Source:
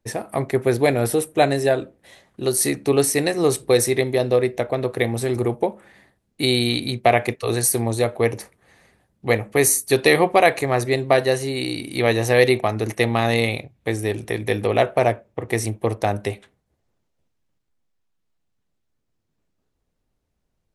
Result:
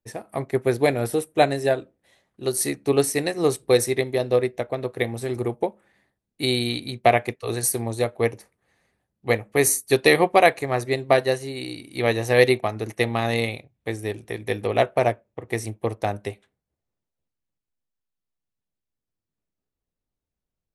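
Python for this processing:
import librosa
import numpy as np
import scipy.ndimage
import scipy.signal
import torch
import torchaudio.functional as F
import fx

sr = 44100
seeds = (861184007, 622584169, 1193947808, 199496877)

y = fx.upward_expand(x, sr, threshold_db=-36.0, expansion=1.5)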